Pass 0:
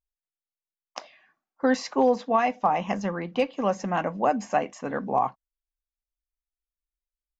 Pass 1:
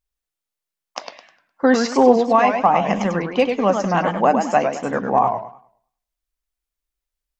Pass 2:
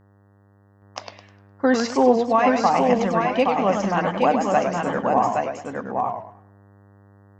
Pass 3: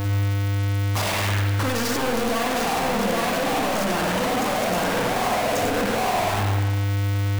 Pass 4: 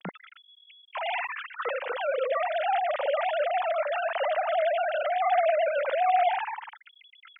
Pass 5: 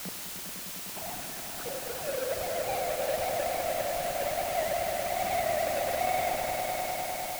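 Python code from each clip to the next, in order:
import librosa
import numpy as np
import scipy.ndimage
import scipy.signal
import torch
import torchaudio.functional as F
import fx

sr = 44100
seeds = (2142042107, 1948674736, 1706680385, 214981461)

y1 = fx.echo_warbled(x, sr, ms=102, feedback_pct=30, rate_hz=2.8, cents=185, wet_db=-6.0)
y1 = y1 * librosa.db_to_amplitude(7.0)
y2 = fx.dmg_buzz(y1, sr, base_hz=100.0, harmonics=19, level_db=-52.0, tilt_db=-6, odd_only=False)
y2 = y2 + 10.0 ** (-4.0 / 20.0) * np.pad(y2, (int(820 * sr / 1000.0), 0))[:len(y2)]
y2 = y2 * librosa.db_to_amplitude(-3.5)
y3 = np.sign(y2) * np.sqrt(np.mean(np.square(y2)))
y3 = fx.rev_spring(y3, sr, rt60_s=1.1, pass_ms=(49,), chirp_ms=35, drr_db=1.5)
y3 = y3 * librosa.db_to_amplitude(-3.0)
y4 = fx.sine_speech(y3, sr)
y4 = scipy.signal.sosfilt(scipy.signal.butter(2, 260.0, 'highpass', fs=sr, output='sos'), y4)
y4 = y4 * librosa.db_to_amplitude(-5.5)
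y5 = scipy.signal.medfilt(y4, 41)
y5 = fx.echo_swell(y5, sr, ms=101, loudest=5, wet_db=-8.5)
y5 = fx.quant_dither(y5, sr, seeds[0], bits=6, dither='triangular')
y5 = y5 * librosa.db_to_amplitude(-3.5)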